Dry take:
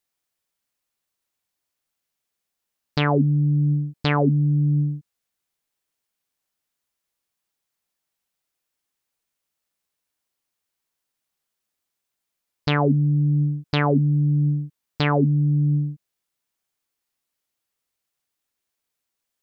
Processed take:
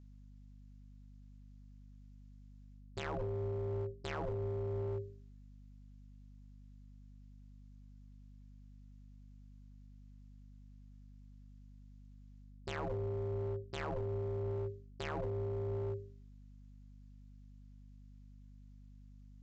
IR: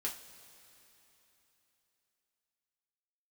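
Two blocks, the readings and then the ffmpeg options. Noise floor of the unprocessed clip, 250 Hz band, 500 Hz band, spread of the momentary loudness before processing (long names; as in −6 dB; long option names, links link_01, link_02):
−82 dBFS, −25.0 dB, −9.5 dB, 8 LU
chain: -af "bandreject=frequency=50:width_type=h:width=6,bandreject=frequency=100:width_type=h:width=6,bandreject=frequency=150:width_type=h:width=6,bandreject=frequency=200:width_type=h:width=6,bandreject=frequency=250:width_type=h:width=6,bandreject=frequency=300:width_type=h:width=6,adynamicequalizer=threshold=0.0251:dfrequency=160:dqfactor=0.85:tfrequency=160:tqfactor=0.85:attack=5:release=100:ratio=0.375:range=2:mode=cutabove:tftype=bell,areverse,acompressor=threshold=-33dB:ratio=12,areverse,aeval=exprs='val(0)*sin(2*PI*250*n/s)':channel_layout=same,aresample=16000,asoftclip=type=hard:threshold=-34.5dB,aresample=44100,aeval=exprs='val(0)+0.00158*(sin(2*PI*50*n/s)+sin(2*PI*2*50*n/s)/2+sin(2*PI*3*50*n/s)/3+sin(2*PI*4*50*n/s)/4+sin(2*PI*5*50*n/s)/5)':channel_layout=same,volume=1.5dB"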